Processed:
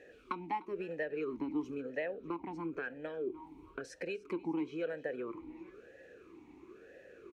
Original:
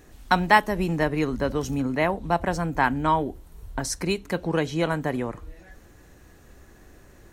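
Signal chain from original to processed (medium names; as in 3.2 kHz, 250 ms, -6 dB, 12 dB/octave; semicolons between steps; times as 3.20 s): compression 5:1, threshold -34 dBFS, peak gain reduction 20 dB; feedback delay 299 ms, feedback 48%, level -19 dB; talking filter e-u 1 Hz; trim +9.5 dB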